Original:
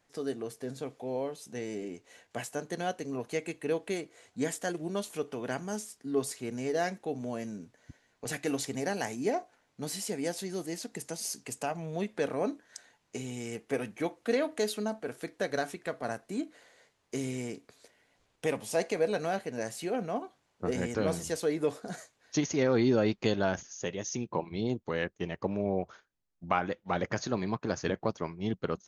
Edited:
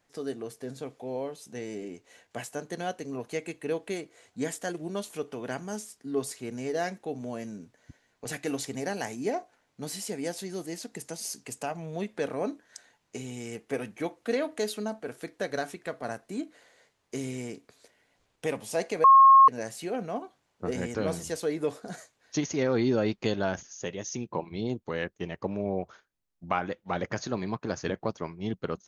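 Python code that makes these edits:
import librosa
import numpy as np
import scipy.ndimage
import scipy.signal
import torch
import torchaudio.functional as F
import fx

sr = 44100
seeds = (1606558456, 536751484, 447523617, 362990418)

y = fx.edit(x, sr, fx.bleep(start_s=19.04, length_s=0.44, hz=1080.0, db=-11.5), tone=tone)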